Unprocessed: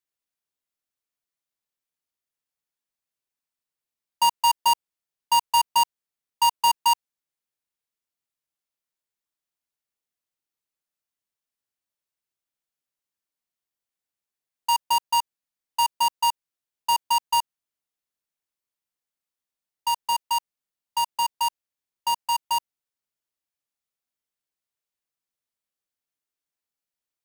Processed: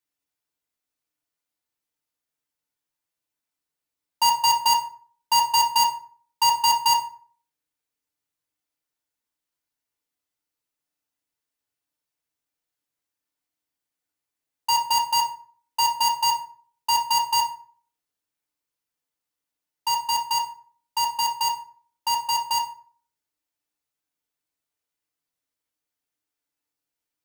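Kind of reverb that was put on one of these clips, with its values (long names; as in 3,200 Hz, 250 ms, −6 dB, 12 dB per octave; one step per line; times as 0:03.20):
feedback delay network reverb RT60 0.47 s, low-frequency decay 1.1×, high-frequency decay 0.65×, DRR −0.5 dB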